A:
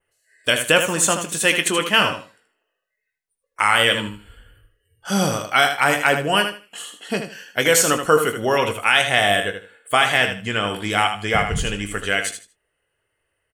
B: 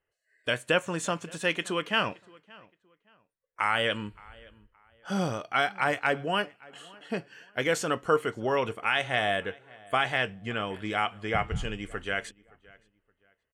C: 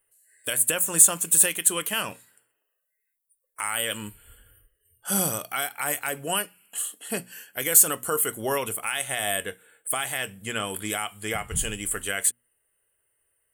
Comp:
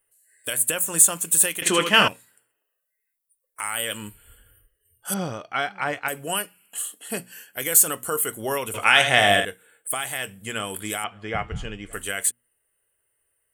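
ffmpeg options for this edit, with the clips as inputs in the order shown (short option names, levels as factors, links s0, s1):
-filter_complex "[0:a]asplit=2[s0][s1];[1:a]asplit=2[s2][s3];[2:a]asplit=5[s4][s5][s6][s7][s8];[s4]atrim=end=1.622[s9];[s0]atrim=start=1.618:end=2.082[s10];[s5]atrim=start=2.078:end=5.142[s11];[s2]atrim=start=5.138:end=6.082[s12];[s6]atrim=start=6.078:end=8.742[s13];[s1]atrim=start=8.738:end=9.452[s14];[s7]atrim=start=9.448:end=11.042[s15];[s3]atrim=start=11.038:end=11.932[s16];[s8]atrim=start=11.928[s17];[s9][s10]acrossfade=d=0.004:c1=hsin:c2=hsin[s18];[s18][s11]acrossfade=d=0.004:c1=hsin:c2=hsin[s19];[s19][s12]acrossfade=d=0.004:c1=hsin:c2=hsin[s20];[s20][s13]acrossfade=d=0.004:c1=hsin:c2=hsin[s21];[s21][s14]acrossfade=d=0.004:c1=hsin:c2=hsin[s22];[s22][s15]acrossfade=d=0.004:c1=hsin:c2=hsin[s23];[s23][s16]acrossfade=d=0.004:c1=hsin:c2=hsin[s24];[s24][s17]acrossfade=d=0.004:c1=hsin:c2=hsin"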